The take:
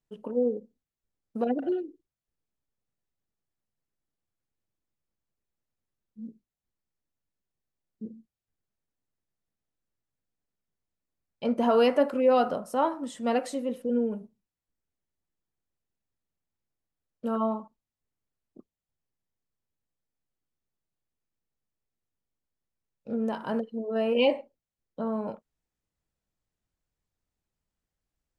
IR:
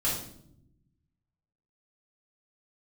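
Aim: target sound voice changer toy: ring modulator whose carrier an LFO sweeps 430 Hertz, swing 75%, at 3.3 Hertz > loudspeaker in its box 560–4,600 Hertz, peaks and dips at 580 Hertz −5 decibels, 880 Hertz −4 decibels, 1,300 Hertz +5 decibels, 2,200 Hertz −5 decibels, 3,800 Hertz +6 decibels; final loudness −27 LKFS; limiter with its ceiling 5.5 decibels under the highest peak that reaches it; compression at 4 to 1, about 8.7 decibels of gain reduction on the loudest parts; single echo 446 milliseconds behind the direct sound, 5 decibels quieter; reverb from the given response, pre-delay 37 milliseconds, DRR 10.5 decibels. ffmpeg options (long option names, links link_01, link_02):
-filter_complex "[0:a]acompressor=threshold=-28dB:ratio=4,alimiter=level_in=0.5dB:limit=-24dB:level=0:latency=1,volume=-0.5dB,aecho=1:1:446:0.562,asplit=2[link_01][link_02];[1:a]atrim=start_sample=2205,adelay=37[link_03];[link_02][link_03]afir=irnorm=-1:irlink=0,volume=-18.5dB[link_04];[link_01][link_04]amix=inputs=2:normalize=0,aeval=exprs='val(0)*sin(2*PI*430*n/s+430*0.75/3.3*sin(2*PI*3.3*n/s))':channel_layout=same,highpass=560,equalizer=frequency=580:width_type=q:width=4:gain=-5,equalizer=frequency=880:width_type=q:width=4:gain=-4,equalizer=frequency=1300:width_type=q:width=4:gain=5,equalizer=frequency=2200:width_type=q:width=4:gain=-5,equalizer=frequency=3800:width_type=q:width=4:gain=6,lowpass=frequency=4600:width=0.5412,lowpass=frequency=4600:width=1.3066,volume=13dB"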